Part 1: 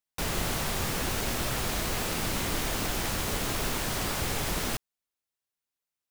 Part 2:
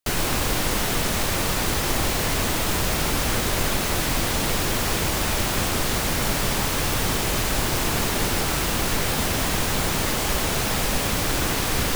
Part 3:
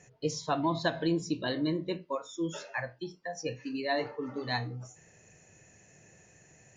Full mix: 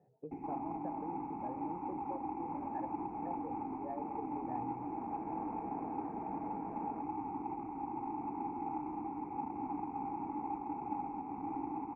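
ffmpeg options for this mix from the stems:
-filter_complex "[0:a]aeval=exprs='0.0355*(abs(mod(val(0)/0.0355+3,4)-2)-1)':c=same,aecho=1:1:4.4:0.99,adelay=2250,volume=0.282[s0];[1:a]afwtdn=0.0562,alimiter=limit=0.119:level=0:latency=1:release=337,asplit=3[s1][s2][s3];[s1]bandpass=f=300:t=q:w=8,volume=1[s4];[s2]bandpass=f=870:t=q:w=8,volume=0.501[s5];[s3]bandpass=f=2240:t=q:w=8,volume=0.355[s6];[s4][s5][s6]amix=inputs=3:normalize=0,adelay=250,volume=0.841[s7];[2:a]volume=0.447,asplit=2[s8][s9];[s9]apad=whole_len=368611[s10];[s0][s10]sidechaincompress=threshold=0.00355:ratio=8:attack=16:release=602[s11];[s11][s8]amix=inputs=2:normalize=0,asuperpass=centerf=320:order=4:qfactor=0.57,acompressor=threshold=0.00562:ratio=4,volume=1[s12];[s7][s12]amix=inputs=2:normalize=0,equalizer=f=810:w=5.8:g=14,adynamicsmooth=sensitivity=7.5:basefreq=3000,asuperstop=centerf=3800:order=20:qfactor=1.4"

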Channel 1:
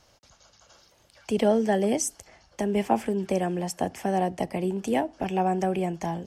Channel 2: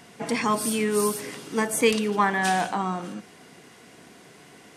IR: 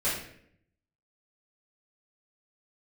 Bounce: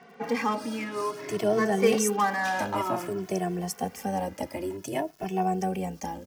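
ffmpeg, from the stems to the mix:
-filter_complex "[0:a]tremolo=f=100:d=0.519,aeval=exprs='val(0)*gte(abs(val(0)),0.00251)':c=same,volume=1.19[s0];[1:a]asplit=2[s1][s2];[s2]highpass=f=720:p=1,volume=5.01,asoftclip=type=tanh:threshold=0.447[s3];[s1][s3]amix=inputs=2:normalize=0,lowpass=f=1100:p=1,volume=0.501,adynamicsmooth=sensitivity=4.5:basefreq=3600,volume=0.841[s4];[s0][s4]amix=inputs=2:normalize=0,highpass=60,aexciter=amount=1.5:drive=7.3:freq=4800,asplit=2[s5][s6];[s6]adelay=2.2,afreqshift=0.54[s7];[s5][s7]amix=inputs=2:normalize=1"

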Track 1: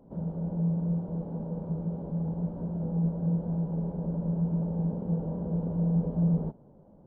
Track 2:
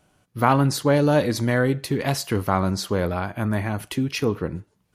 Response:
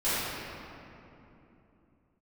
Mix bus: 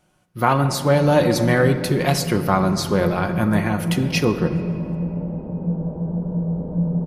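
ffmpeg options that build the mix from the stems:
-filter_complex "[0:a]adelay=550,volume=0.422,asplit=2[s0][s1];[s1]volume=0.335[s2];[1:a]aecho=1:1:5.6:0.43,volume=0.794,asplit=2[s3][s4];[s4]volume=0.0841[s5];[2:a]atrim=start_sample=2205[s6];[s2][s5]amix=inputs=2:normalize=0[s7];[s7][s6]afir=irnorm=-1:irlink=0[s8];[s0][s3][s8]amix=inputs=3:normalize=0,dynaudnorm=f=240:g=3:m=1.88"

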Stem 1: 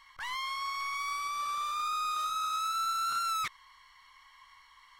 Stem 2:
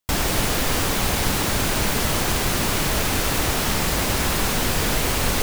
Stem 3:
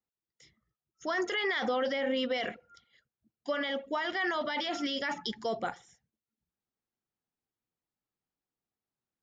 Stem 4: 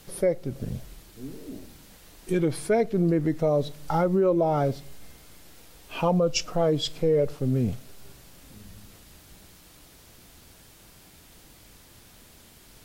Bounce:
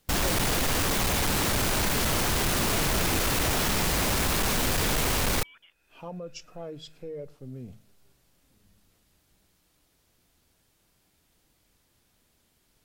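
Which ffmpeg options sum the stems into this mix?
-filter_complex "[0:a]adelay=2100,volume=0.299[s0];[1:a]asoftclip=type=hard:threshold=0.0841,volume=0.891[s1];[2:a]acrusher=bits=5:mix=0:aa=0.5,volume=0.15,asplit=2[s2][s3];[3:a]bandreject=f=52.71:t=h:w=4,bandreject=f=105.42:t=h:w=4,bandreject=f=158.13:t=h:w=4,bandreject=f=210.84:t=h:w=4,volume=0.158[s4];[s3]apad=whole_len=566250[s5];[s4][s5]sidechaincompress=threshold=0.002:ratio=8:attack=10:release=460[s6];[s0][s2]amix=inputs=2:normalize=0,lowpass=f=3100:t=q:w=0.5098,lowpass=f=3100:t=q:w=0.6013,lowpass=f=3100:t=q:w=0.9,lowpass=f=3100:t=q:w=2.563,afreqshift=-3600,acompressor=threshold=0.001:ratio=2,volume=1[s7];[s1][s6][s7]amix=inputs=3:normalize=0"

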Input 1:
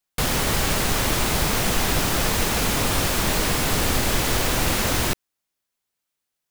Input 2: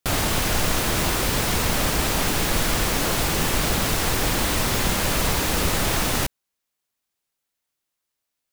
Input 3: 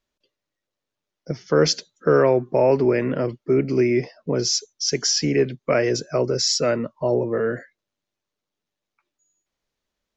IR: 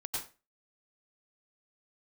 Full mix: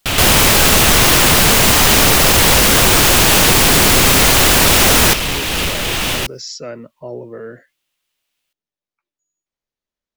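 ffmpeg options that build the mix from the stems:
-filter_complex "[0:a]aeval=exprs='0.398*sin(PI/2*5.01*val(0)/0.398)':c=same,volume=1[s0];[1:a]equalizer=f=2900:w=1.4:g=10,asoftclip=type=hard:threshold=0.112,volume=0.794[s1];[2:a]volume=0.168[s2];[s1][s2]amix=inputs=2:normalize=0,acontrast=80,alimiter=limit=0.224:level=0:latency=1:release=189,volume=1[s3];[s0][s3]amix=inputs=2:normalize=0"

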